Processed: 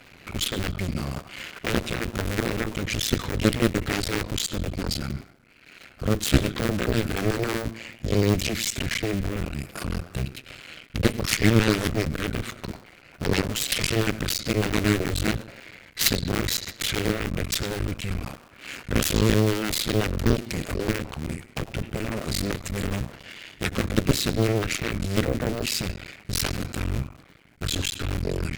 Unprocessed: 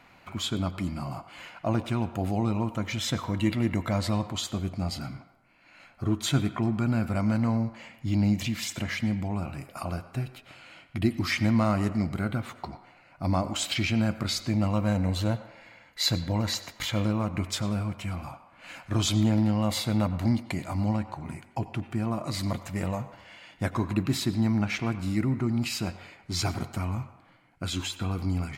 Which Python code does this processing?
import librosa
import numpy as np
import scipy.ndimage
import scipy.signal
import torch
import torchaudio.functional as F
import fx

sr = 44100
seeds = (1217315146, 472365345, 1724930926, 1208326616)

y = fx.cycle_switch(x, sr, every=2, mode='muted')
y = fx.cheby_harmonics(y, sr, harmonics=(4, 7), levels_db=(-18, -8), full_scale_db=-12.5)
y = fx.peak_eq(y, sr, hz=890.0, db=-11.0, octaves=1.1)
y = y * 10.0 ** (7.0 / 20.0)